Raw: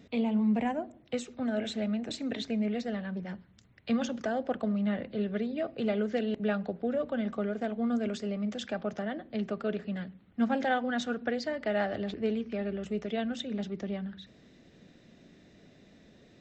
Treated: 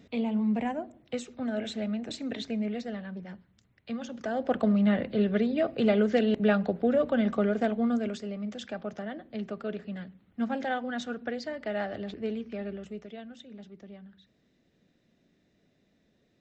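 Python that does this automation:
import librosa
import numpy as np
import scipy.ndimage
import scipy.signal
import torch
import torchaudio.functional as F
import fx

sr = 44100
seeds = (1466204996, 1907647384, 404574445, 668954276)

y = fx.gain(x, sr, db=fx.line((2.54, -0.5), (4.03, -7.0), (4.57, 6.0), (7.65, 6.0), (8.26, -2.5), (12.7, -2.5), (13.24, -12.0)))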